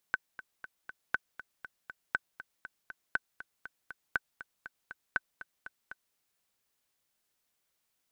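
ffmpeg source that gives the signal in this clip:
ffmpeg -f lavfi -i "aevalsrc='pow(10,(-14.5-15*gte(mod(t,4*60/239),60/239))/20)*sin(2*PI*1520*mod(t,60/239))*exp(-6.91*mod(t,60/239)/0.03)':duration=6.02:sample_rate=44100" out.wav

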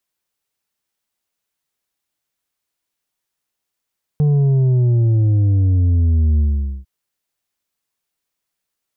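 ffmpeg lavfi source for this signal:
ffmpeg -f lavfi -i "aevalsrc='0.251*clip((2.65-t)/0.46,0,1)*tanh(1.88*sin(2*PI*150*2.65/log(65/150)*(exp(log(65/150)*t/2.65)-1)))/tanh(1.88)':duration=2.65:sample_rate=44100" out.wav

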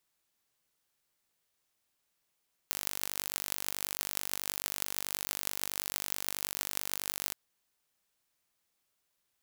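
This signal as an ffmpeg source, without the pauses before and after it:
ffmpeg -f lavfi -i "aevalsrc='0.708*eq(mod(n,896),0)*(0.5+0.5*eq(mod(n,7168),0))':duration=4.63:sample_rate=44100" out.wav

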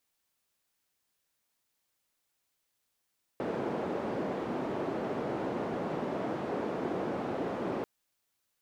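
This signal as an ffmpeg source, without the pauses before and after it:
ffmpeg -f lavfi -i "anoisesrc=color=white:duration=4.44:sample_rate=44100:seed=1,highpass=frequency=210,lowpass=frequency=490,volume=-10.9dB" out.wav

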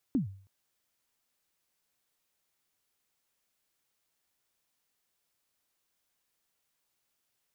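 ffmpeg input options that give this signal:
ffmpeg -f lavfi -i "aevalsrc='0.0841*pow(10,-3*t/0.48)*sin(2*PI*(300*0.123/log(97/300)*(exp(log(97/300)*min(t,0.123)/0.123)-1)+97*max(t-0.123,0)))':duration=0.32:sample_rate=44100" out.wav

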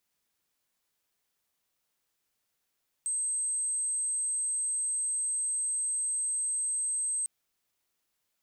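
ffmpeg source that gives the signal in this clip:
ffmpeg -f lavfi -i "sine=frequency=8270:duration=4.2:sample_rate=44100,volume=-9.94dB" out.wav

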